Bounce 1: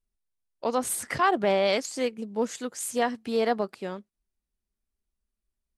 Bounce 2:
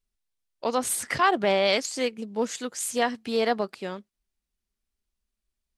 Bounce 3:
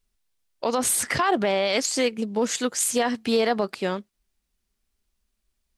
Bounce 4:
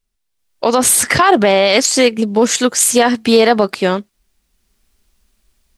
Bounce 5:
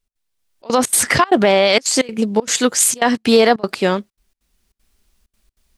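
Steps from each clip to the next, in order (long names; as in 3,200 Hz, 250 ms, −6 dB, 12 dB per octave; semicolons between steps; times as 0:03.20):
parametric band 3,800 Hz +5 dB 2.5 octaves
brickwall limiter −20.5 dBFS, peak gain reduction 11.5 dB; level +7.5 dB
automatic gain control gain up to 15.5 dB
gate pattern "x.xxxxxx.xx.xxx" 194 BPM −24 dB; level −1.5 dB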